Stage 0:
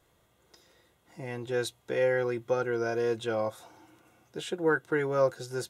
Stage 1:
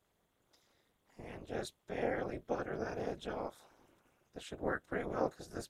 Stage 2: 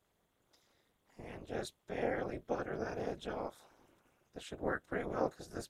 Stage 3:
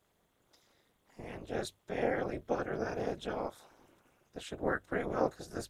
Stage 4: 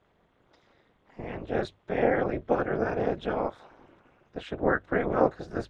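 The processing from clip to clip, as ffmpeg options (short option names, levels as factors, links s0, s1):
-af "afftfilt=real='hypot(re,im)*cos(2*PI*random(0))':imag='hypot(re,im)*sin(2*PI*random(1))':win_size=512:overlap=0.75,tremolo=f=230:d=0.974"
-af anull
-af "bandreject=f=50:t=h:w=6,bandreject=f=100:t=h:w=6,volume=1.5"
-af "lowpass=2600,volume=2.51"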